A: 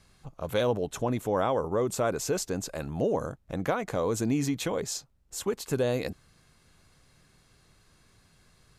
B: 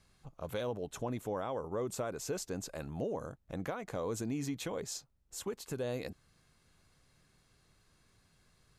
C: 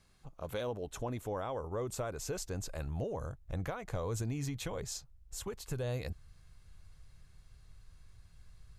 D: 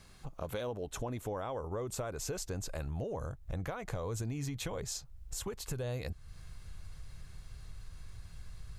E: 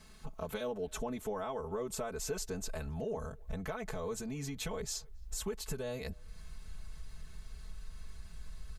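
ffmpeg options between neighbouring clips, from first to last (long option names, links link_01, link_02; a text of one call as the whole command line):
ffmpeg -i in.wav -af "alimiter=limit=-20dB:level=0:latency=1:release=294,volume=-7dB" out.wav
ffmpeg -i in.wav -af "asubboost=boost=10.5:cutoff=79" out.wav
ffmpeg -i in.wav -af "acompressor=threshold=-50dB:ratio=2.5,volume=10dB" out.wav
ffmpeg -i in.wav -filter_complex "[0:a]aecho=1:1:4.6:0.99,asplit=2[link_01][link_02];[link_02]adelay=270,highpass=300,lowpass=3400,asoftclip=type=hard:threshold=-32dB,volume=-27dB[link_03];[link_01][link_03]amix=inputs=2:normalize=0,volume=-2.5dB" out.wav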